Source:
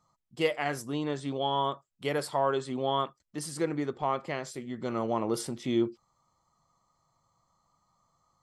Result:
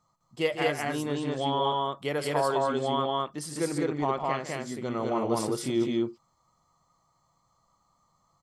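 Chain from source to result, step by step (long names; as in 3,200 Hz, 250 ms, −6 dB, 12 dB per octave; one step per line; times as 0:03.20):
loudspeakers that aren't time-aligned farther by 52 metres −11 dB, 71 metres −1 dB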